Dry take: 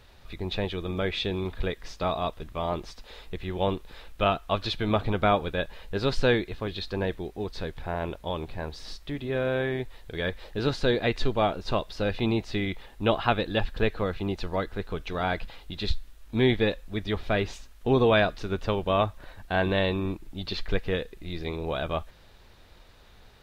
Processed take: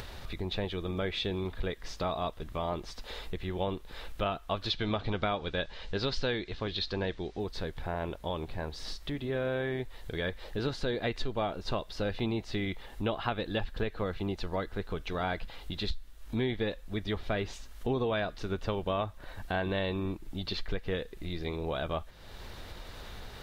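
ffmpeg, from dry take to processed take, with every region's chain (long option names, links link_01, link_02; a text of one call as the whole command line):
ffmpeg -i in.wav -filter_complex "[0:a]asettb=1/sr,asplit=3[link_01][link_02][link_03];[link_01]atrim=end=4.704[link_04];[link_02]atrim=start=4.7:end=7.4,asetpts=PTS-STARTPTS,afade=type=in:duration=0.004:curve=qsin,afade=type=out:start_time=2.696:duration=0.004:curve=qsin,lowpass=frequency=5300:width=0.5412,lowpass=frequency=5300:width=1.3066,aemphasis=mode=production:type=75kf[link_05];[link_03]atrim=start=7.396[link_06];[link_04][link_05]acrossfade=duration=0.004:curve1=hsin:curve2=qsin[link_07];[link_07][link_06]acrossfade=duration=0.004:curve1=qsin:curve2=hsin,acompressor=mode=upward:threshold=-28dB:ratio=2.5,bandreject=frequency=2500:width=25,acompressor=threshold=-24dB:ratio=6,volume=-3dB" out.wav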